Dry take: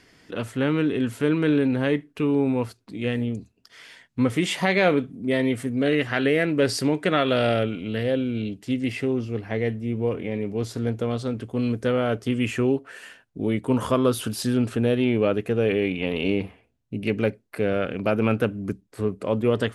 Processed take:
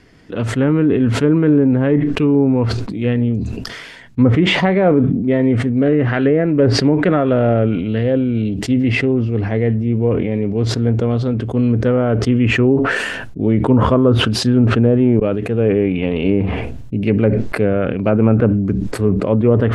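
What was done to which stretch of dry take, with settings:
0:15.20–0:15.70: fade in
whole clip: treble cut that deepens with the level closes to 1,200 Hz, closed at −16.5 dBFS; spectral tilt −2 dB per octave; level that may fall only so fast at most 34 dB per second; level +4.5 dB

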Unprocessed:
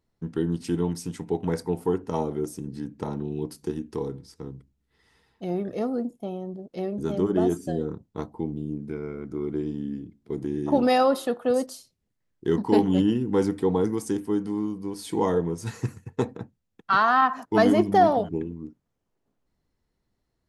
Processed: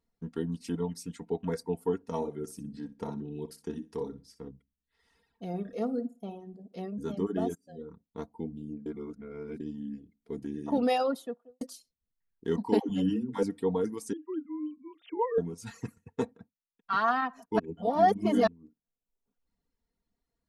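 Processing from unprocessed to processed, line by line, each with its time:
0:02.16–0:04.48: repeating echo 61 ms, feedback 18%, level −7 dB
0:05.48–0:06.82: flutter between parallel walls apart 9.7 metres, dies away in 0.36 s
0:07.55–0:08.29: fade in linear, from −20 dB
0:08.86–0:09.60: reverse
0:11.01–0:11.61: fade out and dull
0:12.79–0:13.43: all-pass dispersion lows, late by 106 ms, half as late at 370 Hz
0:14.13–0:15.38: three sine waves on the formant tracks
0:16.28–0:17.04: duck −13 dB, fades 0.25 s
0:17.59–0:18.47: reverse
whole clip: reverb reduction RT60 0.8 s; comb filter 4.3 ms, depth 53%; level −6.5 dB

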